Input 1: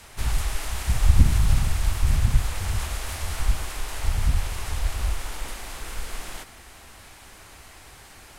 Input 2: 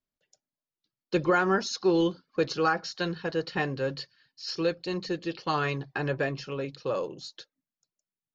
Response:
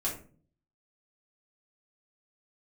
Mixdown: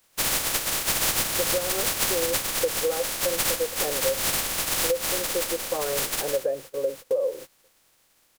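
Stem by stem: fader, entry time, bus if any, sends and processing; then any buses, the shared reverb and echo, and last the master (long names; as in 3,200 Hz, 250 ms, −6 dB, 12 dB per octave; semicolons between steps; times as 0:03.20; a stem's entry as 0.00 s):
0.0 dB, 0.00 s, send −15 dB, compressing power law on the bin magnitudes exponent 0.13
−0.5 dB, 0.25 s, no send, automatic gain control gain up to 13 dB; resonant band-pass 530 Hz, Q 5.5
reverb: on, RT60 0.40 s, pre-delay 4 ms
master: noise gate −37 dBFS, range −18 dB; parametric band 530 Hz +4 dB 0.22 octaves; downward compressor 12 to 1, threshold −21 dBFS, peak gain reduction 15 dB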